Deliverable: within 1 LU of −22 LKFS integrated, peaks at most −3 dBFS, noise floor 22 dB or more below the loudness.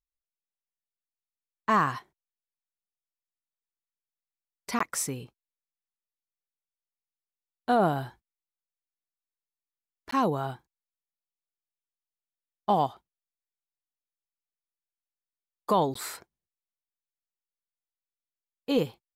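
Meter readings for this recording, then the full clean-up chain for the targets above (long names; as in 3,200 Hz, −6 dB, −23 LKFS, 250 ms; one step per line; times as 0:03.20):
number of dropouts 3; longest dropout 14 ms; integrated loudness −28.5 LKFS; sample peak −14.5 dBFS; target loudness −22.0 LKFS
→ repair the gap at 0:04.79/0:10.11/0:15.94, 14 ms
level +6.5 dB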